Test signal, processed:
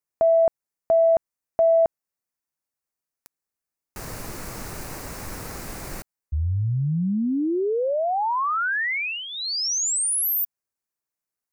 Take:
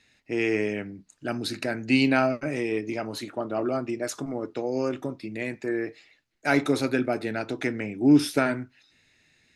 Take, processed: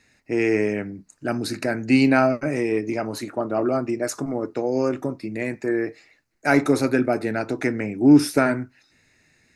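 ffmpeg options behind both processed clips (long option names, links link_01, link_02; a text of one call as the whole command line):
ffmpeg -i in.wav -af "acontrast=30,equalizer=frequency=3300:width=2.4:gain=-12.5" out.wav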